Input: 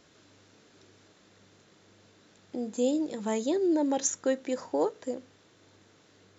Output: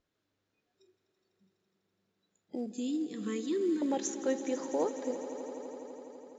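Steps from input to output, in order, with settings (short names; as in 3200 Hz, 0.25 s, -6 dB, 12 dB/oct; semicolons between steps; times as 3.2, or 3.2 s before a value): 2.66–3.82 elliptic band-stop 430–1100 Hz, stop band 40 dB; spectral noise reduction 23 dB; in parallel at -2 dB: compressor 12:1, threshold -41 dBFS, peak gain reduction 19 dB; on the sum: short-mantissa float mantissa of 4-bit; air absorption 69 m; on a send: swelling echo 83 ms, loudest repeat 5, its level -16 dB; on the sum: gain -4.5 dB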